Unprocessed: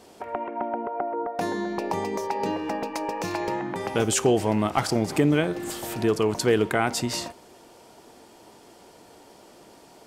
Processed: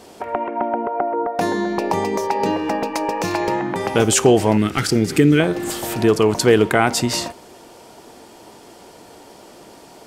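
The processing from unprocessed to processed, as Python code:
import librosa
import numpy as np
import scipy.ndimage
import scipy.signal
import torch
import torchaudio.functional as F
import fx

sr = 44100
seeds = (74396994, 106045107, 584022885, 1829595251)

y = fx.band_shelf(x, sr, hz=790.0, db=-14.0, octaves=1.2, at=(4.57, 5.4))
y = y * 10.0 ** (7.5 / 20.0)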